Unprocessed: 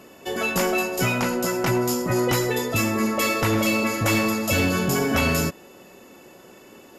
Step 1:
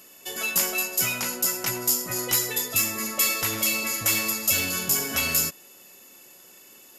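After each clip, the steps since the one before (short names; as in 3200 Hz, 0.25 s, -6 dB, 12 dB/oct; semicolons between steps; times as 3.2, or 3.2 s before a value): pre-emphasis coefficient 0.9; gain +6.5 dB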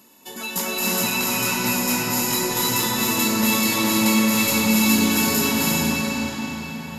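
flange 1.7 Hz, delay 0.9 ms, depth 3.6 ms, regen -80%; small resonant body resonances 220/910/3900 Hz, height 13 dB, ringing for 25 ms; reverb RT60 5.7 s, pre-delay 0.203 s, DRR -8.5 dB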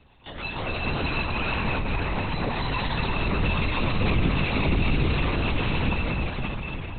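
soft clip -16 dBFS, distortion -15 dB; LPC vocoder at 8 kHz whisper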